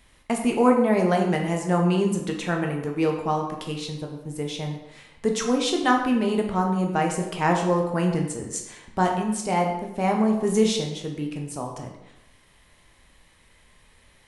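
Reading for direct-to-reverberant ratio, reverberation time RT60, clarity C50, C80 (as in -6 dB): 1.0 dB, 0.90 s, 5.5 dB, 8.0 dB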